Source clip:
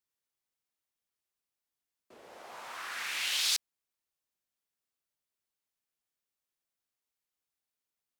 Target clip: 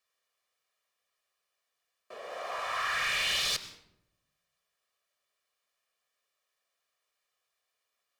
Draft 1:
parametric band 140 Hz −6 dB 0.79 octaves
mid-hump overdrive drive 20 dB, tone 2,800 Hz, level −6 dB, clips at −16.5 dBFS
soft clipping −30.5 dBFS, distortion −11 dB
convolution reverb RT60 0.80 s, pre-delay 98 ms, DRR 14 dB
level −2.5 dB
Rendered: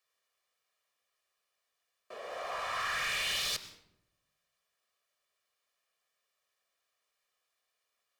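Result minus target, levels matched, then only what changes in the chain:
soft clipping: distortion +9 dB
change: soft clipping −23.5 dBFS, distortion −20 dB

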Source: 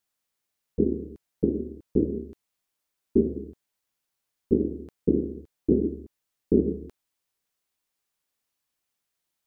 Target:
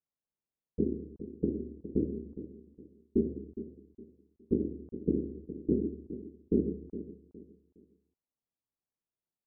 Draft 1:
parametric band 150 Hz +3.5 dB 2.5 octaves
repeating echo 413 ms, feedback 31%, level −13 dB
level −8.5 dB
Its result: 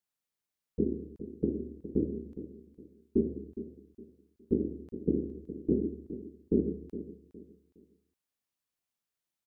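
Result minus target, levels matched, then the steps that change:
1,000 Hz band +3.0 dB
add first: Bessel low-pass filter 740 Hz, order 8

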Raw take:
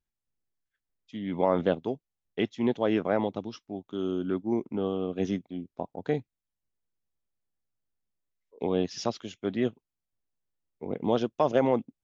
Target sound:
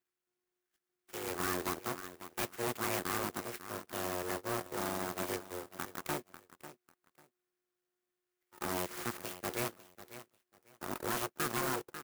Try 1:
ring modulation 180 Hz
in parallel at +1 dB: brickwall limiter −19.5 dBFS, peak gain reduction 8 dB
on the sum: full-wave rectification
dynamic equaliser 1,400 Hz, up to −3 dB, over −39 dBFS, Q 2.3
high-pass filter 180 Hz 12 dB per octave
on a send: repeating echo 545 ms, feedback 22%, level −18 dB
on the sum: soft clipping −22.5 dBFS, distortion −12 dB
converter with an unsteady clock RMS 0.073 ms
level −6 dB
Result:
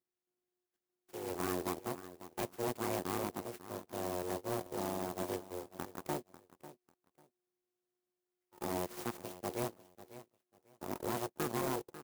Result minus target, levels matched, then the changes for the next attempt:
2,000 Hz band −5.5 dB
add after high-pass filter: flat-topped bell 2,400 Hz +10.5 dB 2.3 octaves

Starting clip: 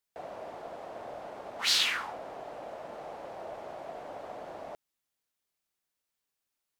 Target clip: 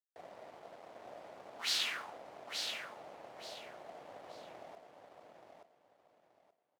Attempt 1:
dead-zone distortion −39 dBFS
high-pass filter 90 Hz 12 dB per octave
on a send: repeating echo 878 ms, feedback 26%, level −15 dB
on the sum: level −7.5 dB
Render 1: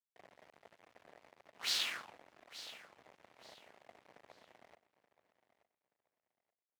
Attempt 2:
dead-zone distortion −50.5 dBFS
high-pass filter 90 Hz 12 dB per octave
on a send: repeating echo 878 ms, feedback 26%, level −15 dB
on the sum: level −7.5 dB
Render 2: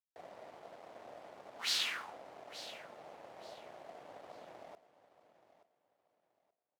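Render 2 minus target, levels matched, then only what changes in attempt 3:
echo-to-direct −9.5 dB
change: repeating echo 878 ms, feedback 26%, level −5.5 dB

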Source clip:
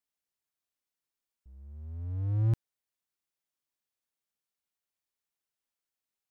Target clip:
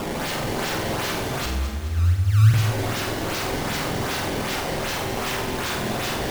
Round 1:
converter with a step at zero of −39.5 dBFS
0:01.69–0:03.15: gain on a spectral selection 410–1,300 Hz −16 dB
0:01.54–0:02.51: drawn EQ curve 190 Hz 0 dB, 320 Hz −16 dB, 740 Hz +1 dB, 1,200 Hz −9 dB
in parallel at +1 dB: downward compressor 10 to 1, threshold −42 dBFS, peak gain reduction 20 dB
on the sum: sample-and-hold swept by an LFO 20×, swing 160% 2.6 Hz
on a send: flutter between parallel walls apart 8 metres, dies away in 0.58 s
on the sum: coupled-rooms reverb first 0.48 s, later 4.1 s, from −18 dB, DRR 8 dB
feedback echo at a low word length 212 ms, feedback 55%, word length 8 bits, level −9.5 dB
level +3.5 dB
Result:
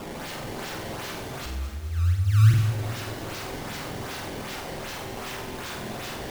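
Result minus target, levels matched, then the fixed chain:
converter with a step at zero: distortion −9 dB
converter with a step at zero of −28 dBFS
0:01.69–0:03.15: gain on a spectral selection 410–1,300 Hz −16 dB
0:01.54–0:02.51: drawn EQ curve 190 Hz 0 dB, 320 Hz −16 dB, 740 Hz +1 dB, 1,200 Hz −9 dB
in parallel at +1 dB: downward compressor 10 to 1, threshold −42 dBFS, peak gain reduction 21 dB
on the sum: sample-and-hold swept by an LFO 20×, swing 160% 2.6 Hz
on a send: flutter between parallel walls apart 8 metres, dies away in 0.58 s
on the sum: coupled-rooms reverb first 0.48 s, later 4.1 s, from −18 dB, DRR 8 dB
feedback echo at a low word length 212 ms, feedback 55%, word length 8 bits, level −9.5 dB
level +3.5 dB

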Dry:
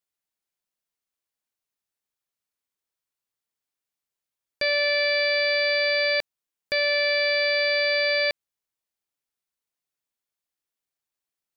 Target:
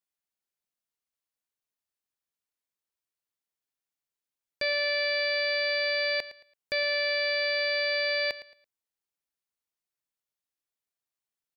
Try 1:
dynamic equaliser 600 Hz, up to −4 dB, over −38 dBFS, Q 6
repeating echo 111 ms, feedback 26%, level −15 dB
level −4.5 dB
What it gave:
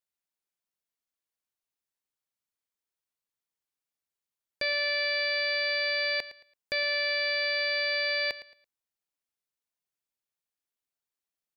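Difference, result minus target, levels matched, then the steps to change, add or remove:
500 Hz band −3.0 dB
change: dynamic equaliser 270 Hz, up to −4 dB, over −38 dBFS, Q 6

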